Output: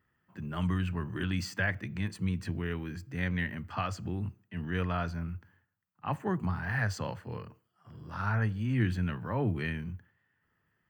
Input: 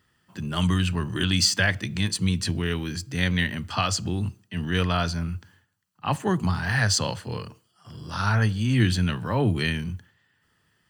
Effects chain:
flat-topped bell 6,200 Hz −13.5 dB 2.3 octaves
level −7.5 dB

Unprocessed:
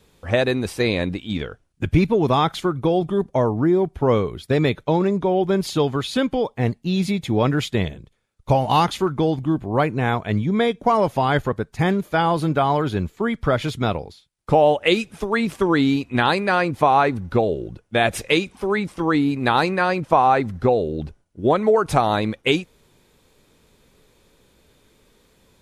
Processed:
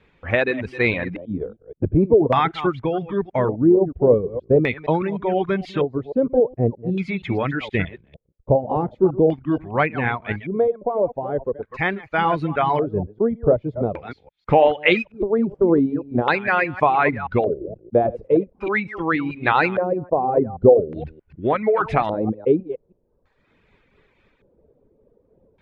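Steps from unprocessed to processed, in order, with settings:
delay that plays each chunk backwards 157 ms, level −9 dB
reverb reduction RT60 0.99 s
0:10.32–0:12.12: parametric band 150 Hz −9 dB 3 octaves
auto-filter low-pass square 0.43 Hz 520–2,200 Hz
amplitude modulation by smooth noise, depth 65%
level +1.5 dB

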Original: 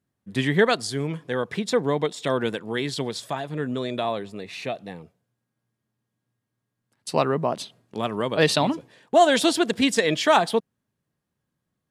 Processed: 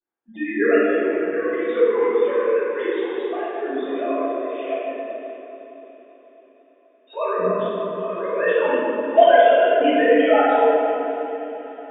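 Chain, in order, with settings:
three sine waves on the formant tracks
feedback delay with all-pass diffusion 603 ms, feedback 45%, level −16 dB
convolution reverb RT60 2.8 s, pre-delay 3 ms, DRR −17.5 dB
level −16 dB

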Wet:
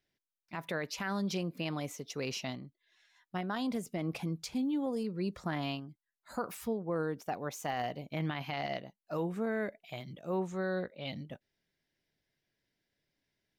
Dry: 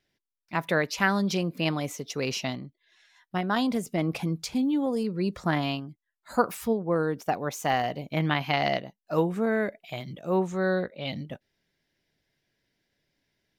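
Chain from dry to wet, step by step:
brickwall limiter −18.5 dBFS, peak gain reduction 9.5 dB
level −7 dB

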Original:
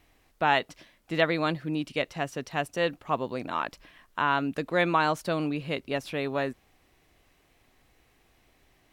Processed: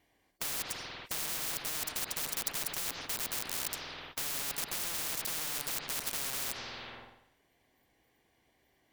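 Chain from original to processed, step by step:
noise reduction from a noise print of the clip's start 22 dB
in parallel at −5 dB: fuzz pedal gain 40 dB, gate −41 dBFS
on the sum: notch comb filter 1,300 Hz
wrap-around overflow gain 20 dB
on a send at −7 dB: convolution reverb RT60 0.80 s, pre-delay 77 ms
on the sum: every bin compressed towards the loudest bin 10 to 1
level +2 dB

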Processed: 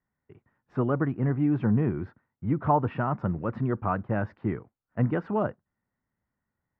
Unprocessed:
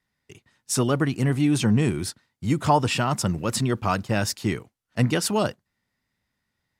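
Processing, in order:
low-pass filter 1,600 Hz 24 dB per octave
level −3.5 dB

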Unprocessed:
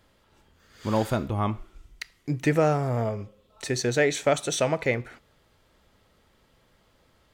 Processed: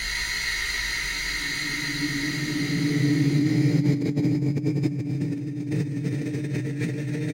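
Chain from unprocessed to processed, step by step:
spectral magnitudes quantised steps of 15 dB
parametric band 2,600 Hz −2.5 dB
mains-hum notches 50/100/150/200/250/300 Hz
extreme stretch with random phases 20×, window 0.50 s, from 0:02.01
double-tracking delay 17 ms −6 dB
multi-tap delay 43/65/85/88/150 ms −10.5/−14.5/−17.5/−12/−5 dB
brickwall limiter −23.5 dBFS, peak gain reduction 7.5 dB
compressor whose output falls as the input rises −36 dBFS, ratio −0.5
parametric band 160 Hz +7 dB 1.9 octaves
level +9 dB

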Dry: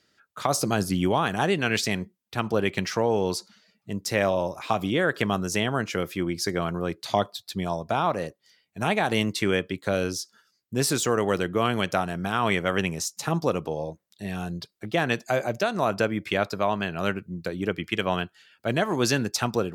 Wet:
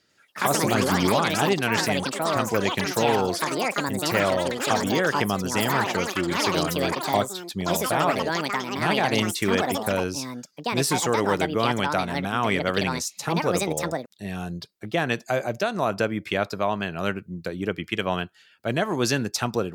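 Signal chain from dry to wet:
delay with pitch and tempo change per echo 96 ms, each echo +6 semitones, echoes 3

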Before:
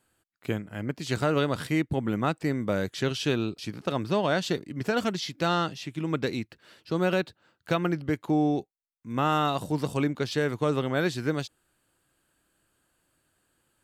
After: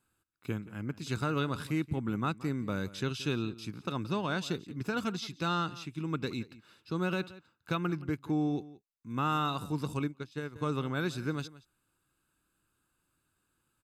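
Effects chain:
notch filter 2,400 Hz, Q 21
comb filter 0.8 ms, depth 52%
slap from a distant wall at 30 metres, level −18 dB
0:09.99–0:10.56: expander for the loud parts 2.5 to 1, over −34 dBFS
level −7 dB

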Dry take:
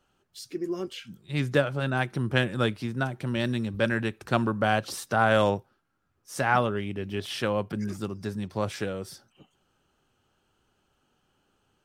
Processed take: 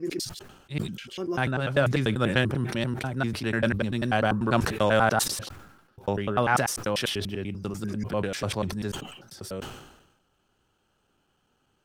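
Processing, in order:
slices reordered back to front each 98 ms, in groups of 7
level that may fall only so fast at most 60 dB per second

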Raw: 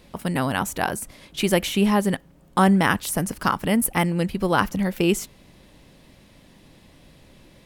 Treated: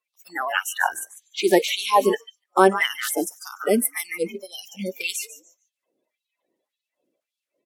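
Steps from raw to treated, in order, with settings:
spectral magnitudes quantised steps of 30 dB
0:04.15–0:04.89: elliptic band-stop filter 770–1,900 Hz, stop band 40 dB
echo with shifted repeats 146 ms, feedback 32%, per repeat +55 Hz, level −10 dB
noise reduction from a noise print of the clip's start 27 dB
auto-filter high-pass sine 1.8 Hz 310–3,800 Hz
level +1 dB

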